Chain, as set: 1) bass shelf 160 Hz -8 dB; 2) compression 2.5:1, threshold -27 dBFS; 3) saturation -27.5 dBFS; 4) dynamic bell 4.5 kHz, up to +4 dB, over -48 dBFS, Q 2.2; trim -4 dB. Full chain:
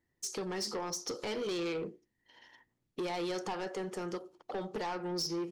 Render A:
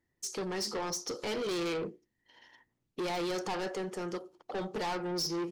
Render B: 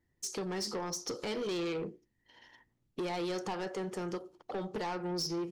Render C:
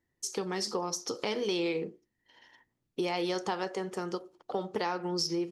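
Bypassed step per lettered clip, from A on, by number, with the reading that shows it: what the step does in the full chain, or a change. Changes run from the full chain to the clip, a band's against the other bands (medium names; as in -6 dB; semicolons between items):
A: 2, mean gain reduction 4.0 dB; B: 1, 125 Hz band +3.0 dB; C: 3, distortion -11 dB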